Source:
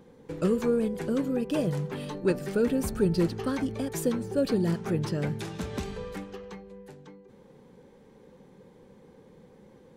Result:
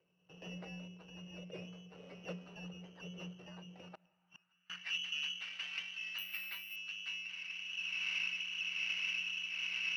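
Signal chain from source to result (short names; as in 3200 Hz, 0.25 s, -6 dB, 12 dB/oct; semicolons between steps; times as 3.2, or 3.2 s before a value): recorder AGC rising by 11 dB/s; tilt +2 dB/oct; 2.02–2.68 modulation noise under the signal 11 dB; rotary speaker horn 1.2 Hz; inverted band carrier 3300 Hz; half-wave rectifier; frequency shift -180 Hz; 3.88–4.7 flipped gate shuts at -28 dBFS, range -34 dB; on a send at -23 dB: reverb RT60 3.0 s, pre-delay 3 ms; on the sum: band-pass sweep 480 Hz -> 2400 Hz, 3.86–4.94; 6.18–6.76 careless resampling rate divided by 3×, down filtered, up hold; gain +2.5 dB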